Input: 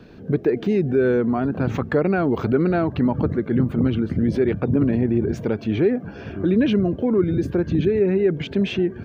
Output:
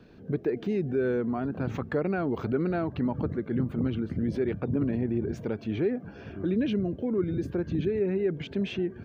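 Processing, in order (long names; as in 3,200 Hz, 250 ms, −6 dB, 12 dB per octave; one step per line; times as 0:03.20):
0:06.54–0:07.18: parametric band 1,100 Hz −5.5 dB 1.1 octaves
level −8.5 dB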